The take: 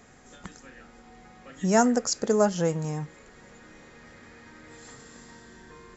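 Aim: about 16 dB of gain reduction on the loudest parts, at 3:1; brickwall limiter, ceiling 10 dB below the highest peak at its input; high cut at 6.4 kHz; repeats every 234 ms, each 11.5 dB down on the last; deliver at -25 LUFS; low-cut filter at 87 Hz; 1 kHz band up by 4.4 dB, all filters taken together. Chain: high-pass 87 Hz; low-pass 6.4 kHz; peaking EQ 1 kHz +6 dB; compression 3:1, threshold -36 dBFS; peak limiter -31 dBFS; feedback delay 234 ms, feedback 27%, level -11.5 dB; trim +19.5 dB

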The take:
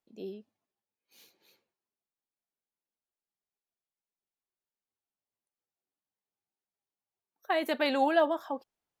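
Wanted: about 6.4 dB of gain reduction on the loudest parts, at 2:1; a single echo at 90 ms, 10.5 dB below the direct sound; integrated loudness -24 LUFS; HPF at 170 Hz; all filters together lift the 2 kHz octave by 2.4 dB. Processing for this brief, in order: high-pass 170 Hz; peaking EQ 2 kHz +3 dB; compression 2:1, threshold -31 dBFS; delay 90 ms -10.5 dB; trim +9.5 dB

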